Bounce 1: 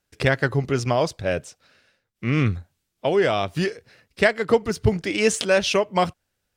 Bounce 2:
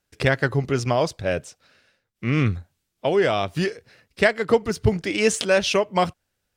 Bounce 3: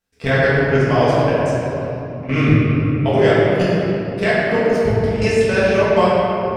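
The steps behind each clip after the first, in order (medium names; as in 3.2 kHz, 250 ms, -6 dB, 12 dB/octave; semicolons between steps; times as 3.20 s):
no audible change
level held to a coarse grid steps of 21 dB; simulated room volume 190 m³, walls hard, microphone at 1.6 m; trim -1 dB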